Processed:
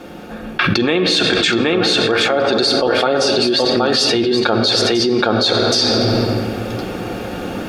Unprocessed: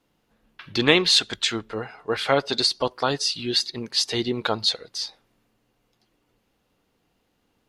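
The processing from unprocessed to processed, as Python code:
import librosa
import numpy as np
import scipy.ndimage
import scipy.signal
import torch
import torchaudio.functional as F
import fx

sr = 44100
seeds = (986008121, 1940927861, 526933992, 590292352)

p1 = fx.peak_eq(x, sr, hz=140.0, db=-13.5, octaves=0.23)
p2 = fx.notch_comb(p1, sr, f0_hz=1000.0)
p3 = p2 + fx.echo_single(p2, sr, ms=773, db=-5.0, dry=0)
p4 = fx.rider(p3, sr, range_db=4, speed_s=0.5)
p5 = fx.high_shelf(p4, sr, hz=3000.0, db=-11.5)
p6 = fx.room_shoebox(p5, sr, seeds[0], volume_m3=2700.0, walls='mixed', distance_m=0.9)
p7 = fx.env_flatten(p6, sr, amount_pct=100)
y = p7 * 10.0 ** (1.5 / 20.0)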